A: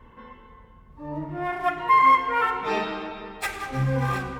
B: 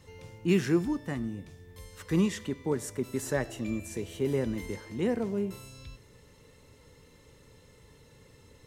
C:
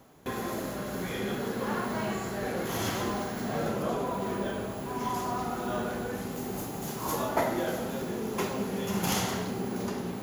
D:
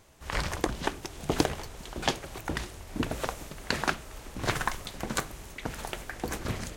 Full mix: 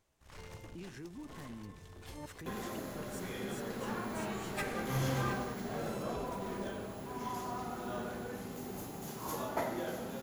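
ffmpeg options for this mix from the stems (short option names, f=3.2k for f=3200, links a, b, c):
-filter_complex "[0:a]adelay=1150,volume=-10.5dB,asplit=3[a][b][c];[a]atrim=end=2.26,asetpts=PTS-STARTPTS,afade=t=out:st=2.256:d=0.004:c=hsin[d];[b]atrim=start=2.26:end=4.18,asetpts=PTS-STARTPTS,volume=0[e];[c]atrim=start=4.18,asetpts=PTS-STARTPTS,afade=t=in:d=0.004:c=hsin[f];[d][e][f]concat=n=3:v=0:a=1[g];[1:a]acompressor=threshold=-33dB:ratio=6,alimiter=level_in=11.5dB:limit=-24dB:level=0:latency=1:release=224,volume=-11.5dB,adelay=300,volume=-4dB[h];[2:a]adelay=2200,volume=-8dB[i];[3:a]aeval=exprs='(tanh(56.2*val(0)+0.75)-tanh(0.75))/56.2':c=same,volume=-14dB[j];[g][h][i][j]amix=inputs=4:normalize=0"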